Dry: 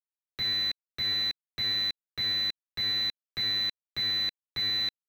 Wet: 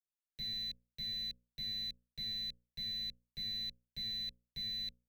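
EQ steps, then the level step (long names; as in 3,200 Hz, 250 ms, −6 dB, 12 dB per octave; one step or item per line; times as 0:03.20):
guitar amp tone stack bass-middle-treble 10-0-1
mains-hum notches 60/120/180/240/300/360/420/480/540 Hz
phaser with its sweep stopped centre 330 Hz, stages 6
+11.5 dB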